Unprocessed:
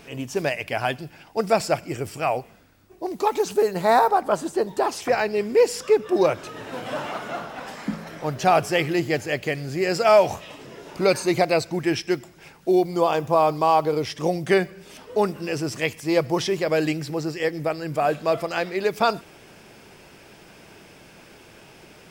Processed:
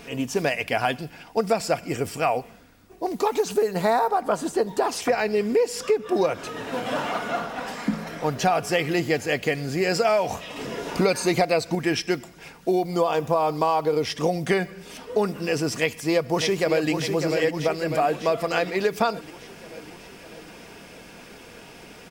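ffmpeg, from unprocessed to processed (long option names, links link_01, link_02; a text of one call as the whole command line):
ffmpeg -i in.wav -filter_complex "[0:a]asplit=2[link_01][link_02];[link_02]afade=type=in:start_time=15.74:duration=0.01,afade=type=out:start_time=16.9:duration=0.01,aecho=0:1:600|1200|1800|2400|3000|3600|4200|4800:0.398107|0.238864|0.143319|0.0859911|0.0515947|0.0309568|0.0185741|0.0111445[link_03];[link_01][link_03]amix=inputs=2:normalize=0,asplit=3[link_04][link_05][link_06];[link_04]atrim=end=10.562[link_07];[link_05]atrim=start=10.558:end=11.752,asetpts=PTS-STARTPTS,volume=6dB[link_08];[link_06]atrim=start=11.748[link_09];[link_07][link_08]acrossfade=duration=0.004:curve1=hsin:curve2=hsin[link_10];[link_10][link_09]acrossfade=duration=0.004:curve1=hsin:curve2=hsin,aecho=1:1:4.2:0.32,acompressor=threshold=-21dB:ratio=6,volume=3dB" out.wav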